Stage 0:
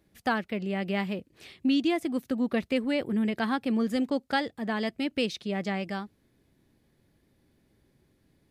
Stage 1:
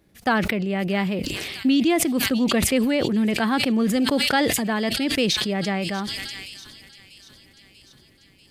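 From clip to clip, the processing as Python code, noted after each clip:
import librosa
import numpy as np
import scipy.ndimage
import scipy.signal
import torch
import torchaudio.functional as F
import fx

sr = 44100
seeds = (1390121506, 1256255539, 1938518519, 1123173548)

y = fx.echo_wet_highpass(x, sr, ms=641, feedback_pct=65, hz=5400.0, wet_db=-3.5)
y = fx.sustainer(y, sr, db_per_s=24.0)
y = F.gain(torch.from_numpy(y), 5.5).numpy()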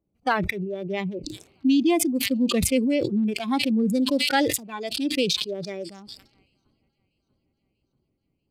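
y = fx.wiener(x, sr, points=25)
y = fx.noise_reduce_blind(y, sr, reduce_db=16)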